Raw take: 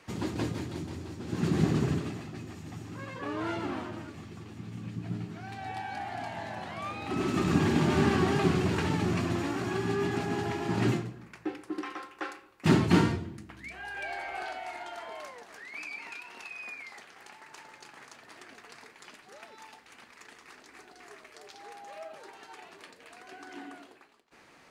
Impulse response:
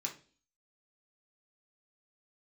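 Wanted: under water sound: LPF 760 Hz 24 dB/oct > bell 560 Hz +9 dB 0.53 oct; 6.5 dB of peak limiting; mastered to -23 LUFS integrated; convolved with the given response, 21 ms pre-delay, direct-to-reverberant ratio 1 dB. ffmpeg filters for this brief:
-filter_complex "[0:a]alimiter=limit=-19dB:level=0:latency=1,asplit=2[a][b];[1:a]atrim=start_sample=2205,adelay=21[c];[b][c]afir=irnorm=-1:irlink=0,volume=-1dB[d];[a][d]amix=inputs=2:normalize=0,lowpass=f=760:w=0.5412,lowpass=f=760:w=1.3066,equalizer=f=560:t=o:w=0.53:g=9,volume=7.5dB"

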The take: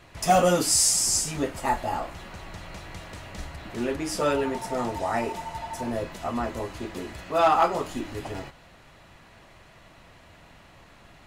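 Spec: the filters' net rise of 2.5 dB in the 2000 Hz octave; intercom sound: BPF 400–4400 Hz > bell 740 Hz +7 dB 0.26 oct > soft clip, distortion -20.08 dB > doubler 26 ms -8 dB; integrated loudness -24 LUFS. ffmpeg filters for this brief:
-filter_complex "[0:a]highpass=400,lowpass=4.4k,equalizer=f=740:t=o:w=0.26:g=7,equalizer=f=2k:t=o:g=3.5,asoftclip=threshold=-7dB,asplit=2[a][b];[b]adelay=26,volume=-8dB[c];[a][c]amix=inputs=2:normalize=0,volume=1.5dB"

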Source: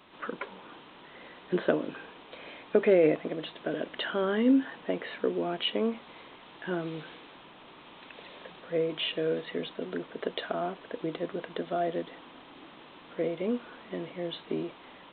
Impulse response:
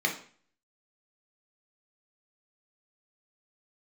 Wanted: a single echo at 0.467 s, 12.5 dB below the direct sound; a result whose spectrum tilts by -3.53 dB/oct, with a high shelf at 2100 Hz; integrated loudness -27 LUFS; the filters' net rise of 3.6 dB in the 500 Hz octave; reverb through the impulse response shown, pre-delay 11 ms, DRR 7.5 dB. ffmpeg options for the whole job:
-filter_complex "[0:a]equalizer=f=500:t=o:g=4,highshelf=f=2.1k:g=4,aecho=1:1:467:0.237,asplit=2[a][b];[1:a]atrim=start_sample=2205,adelay=11[c];[b][c]afir=irnorm=-1:irlink=0,volume=-17.5dB[d];[a][d]amix=inputs=2:normalize=0,volume=0.5dB"

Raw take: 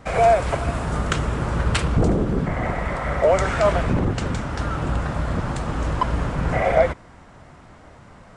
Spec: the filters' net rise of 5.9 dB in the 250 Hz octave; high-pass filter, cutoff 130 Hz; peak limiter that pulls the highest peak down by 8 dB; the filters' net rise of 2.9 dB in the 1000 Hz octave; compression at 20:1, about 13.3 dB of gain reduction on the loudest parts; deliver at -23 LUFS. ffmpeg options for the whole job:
-af "highpass=130,equalizer=f=250:t=o:g=8.5,equalizer=f=1k:t=o:g=3.5,acompressor=threshold=-22dB:ratio=20,volume=6dB,alimiter=limit=-13.5dB:level=0:latency=1"

